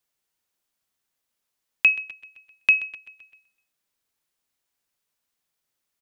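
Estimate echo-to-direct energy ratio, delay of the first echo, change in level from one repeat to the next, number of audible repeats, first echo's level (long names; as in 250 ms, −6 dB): −16.5 dB, 129 ms, −5.0 dB, 4, −18.0 dB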